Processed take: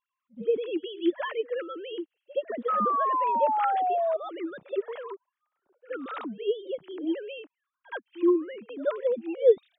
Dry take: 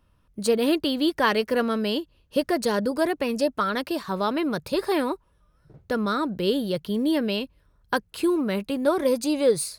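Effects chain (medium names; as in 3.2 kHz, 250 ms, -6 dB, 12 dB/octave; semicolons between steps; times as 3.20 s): formants replaced by sine waves; pre-echo 72 ms -20 dB; painted sound fall, 2.68–4.17 s, 630–1300 Hz -20 dBFS; trim -5.5 dB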